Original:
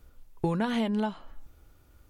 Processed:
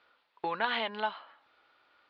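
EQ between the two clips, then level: high-pass 1 kHz 12 dB/octave; resonant low-pass 4.4 kHz, resonance Q 2.5; distance through air 420 m; +8.5 dB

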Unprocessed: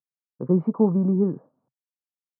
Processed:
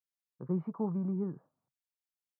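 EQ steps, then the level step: graphic EQ 125/250/500/1000 Hz -4/-11/-11/-4 dB; -2.5 dB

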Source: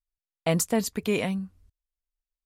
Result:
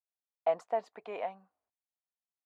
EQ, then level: ladder band-pass 810 Hz, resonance 60%; +4.5 dB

